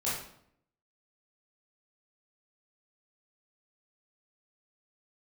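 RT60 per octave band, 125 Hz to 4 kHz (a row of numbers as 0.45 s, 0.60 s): 0.85 s, 0.85 s, 0.70 s, 0.65 s, 0.55 s, 0.50 s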